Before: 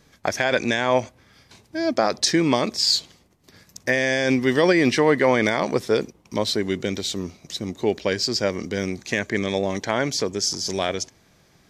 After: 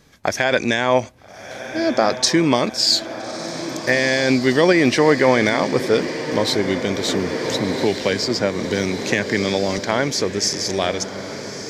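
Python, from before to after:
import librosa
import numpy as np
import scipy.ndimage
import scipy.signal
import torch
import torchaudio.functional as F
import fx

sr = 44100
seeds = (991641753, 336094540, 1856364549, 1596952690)

y = fx.echo_diffused(x, sr, ms=1305, feedback_pct=61, wet_db=-11)
y = fx.band_squash(y, sr, depth_pct=70, at=(7.08, 9.78))
y = F.gain(torch.from_numpy(y), 3.0).numpy()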